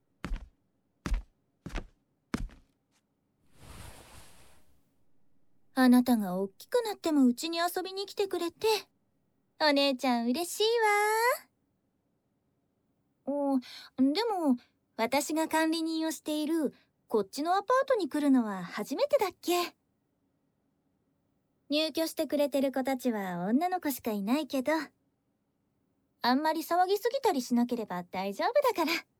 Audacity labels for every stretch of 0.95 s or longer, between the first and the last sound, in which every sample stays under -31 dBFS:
2.450000	5.770000	silence
11.360000	13.280000	silence
19.670000	21.710000	silence
24.830000	26.240000	silence